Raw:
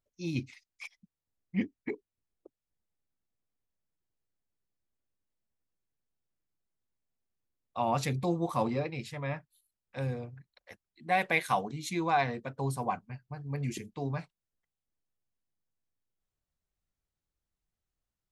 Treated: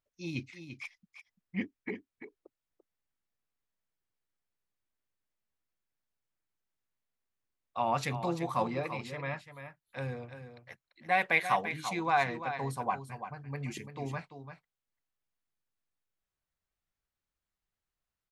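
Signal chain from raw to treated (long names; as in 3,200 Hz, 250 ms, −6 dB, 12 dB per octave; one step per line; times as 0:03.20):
parametric band 1,600 Hz +7.5 dB 2.6 octaves
single-tap delay 341 ms −10 dB
level −5 dB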